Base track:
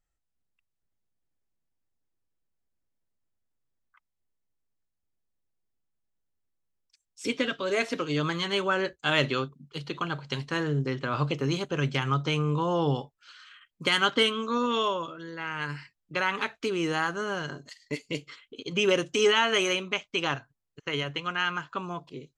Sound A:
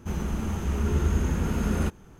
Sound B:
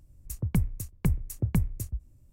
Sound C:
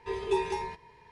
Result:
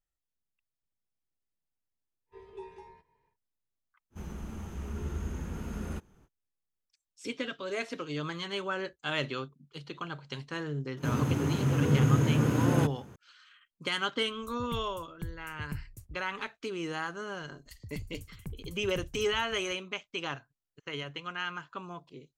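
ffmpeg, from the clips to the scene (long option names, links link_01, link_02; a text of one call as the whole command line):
ffmpeg -i bed.wav -i cue0.wav -i cue1.wav -i cue2.wav -filter_complex "[1:a]asplit=2[link_01][link_02];[2:a]asplit=2[link_03][link_04];[0:a]volume=-7.5dB[link_05];[3:a]highshelf=frequency=2700:gain=-11[link_06];[link_02]afreqshift=68[link_07];[link_04]aecho=1:1:182|364|546|728|910:0.501|0.21|0.0884|0.0371|0.0156[link_08];[link_06]atrim=end=1.11,asetpts=PTS-STARTPTS,volume=-16.5dB,afade=type=in:duration=0.1,afade=type=out:start_time=1.01:duration=0.1,adelay=2260[link_09];[link_01]atrim=end=2.19,asetpts=PTS-STARTPTS,volume=-11.5dB,afade=type=in:duration=0.05,afade=type=out:start_time=2.14:duration=0.05,adelay=4100[link_10];[link_07]atrim=end=2.19,asetpts=PTS-STARTPTS,volume=-0.5dB,afade=type=in:duration=0.004:curve=hsin,afade=type=out:start_time=2.186:duration=0.004:curve=hsin,adelay=10970[link_11];[link_03]atrim=end=2.32,asetpts=PTS-STARTPTS,volume=-14dB,afade=type=in:duration=0.004:curve=hsin,afade=type=out:start_time=2.316:duration=0.004:curve=hsin,adelay=14170[link_12];[link_08]atrim=end=2.32,asetpts=PTS-STARTPTS,volume=-16dB,afade=type=in:duration=0.004:curve=hsin,afade=type=out:start_time=2.316:duration=0.004:curve=hsin,adelay=17410[link_13];[link_05][link_09][link_10][link_11][link_12][link_13]amix=inputs=6:normalize=0" out.wav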